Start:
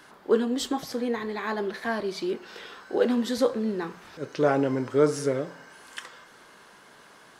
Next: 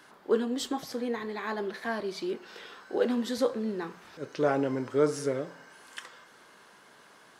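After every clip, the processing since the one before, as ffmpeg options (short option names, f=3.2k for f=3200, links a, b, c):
-af "lowshelf=f=76:g=-7.5,volume=-3.5dB"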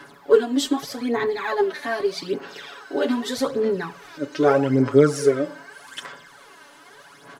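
-af "aecho=1:1:7.1:1,aphaser=in_gain=1:out_gain=1:delay=3.4:decay=0.6:speed=0.82:type=sinusoidal,volume=3.5dB"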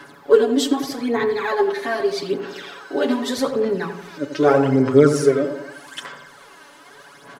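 -filter_complex "[0:a]asplit=2[a][b];[b]adelay=88,lowpass=f=1.3k:p=1,volume=-7.5dB,asplit=2[c][d];[d]adelay=88,lowpass=f=1.3k:p=1,volume=0.54,asplit=2[e][f];[f]adelay=88,lowpass=f=1.3k:p=1,volume=0.54,asplit=2[g][h];[h]adelay=88,lowpass=f=1.3k:p=1,volume=0.54,asplit=2[i][j];[j]adelay=88,lowpass=f=1.3k:p=1,volume=0.54,asplit=2[k][l];[l]adelay=88,lowpass=f=1.3k:p=1,volume=0.54,asplit=2[m][n];[n]adelay=88,lowpass=f=1.3k:p=1,volume=0.54[o];[a][c][e][g][i][k][m][o]amix=inputs=8:normalize=0,volume=2dB"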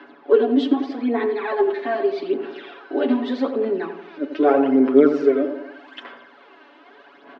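-af "highpass=f=230:w=0.5412,highpass=f=230:w=1.3066,equalizer=f=250:t=q:w=4:g=8,equalizer=f=350:t=q:w=4:g=9,equalizer=f=700:t=q:w=4:g=7,equalizer=f=2.6k:t=q:w=4:g=3,lowpass=f=3.6k:w=0.5412,lowpass=f=3.6k:w=1.3066,volume=-5dB"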